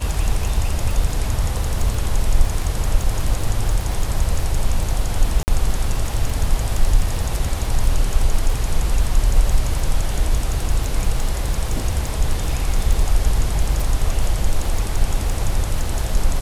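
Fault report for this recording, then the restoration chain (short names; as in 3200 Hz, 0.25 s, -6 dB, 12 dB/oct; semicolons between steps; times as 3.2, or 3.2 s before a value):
crackle 23/s -21 dBFS
5.43–5.48 gap 49 ms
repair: de-click; interpolate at 5.43, 49 ms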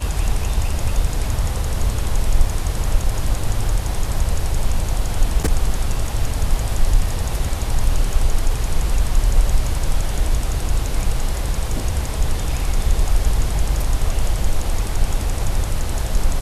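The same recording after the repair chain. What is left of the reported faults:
none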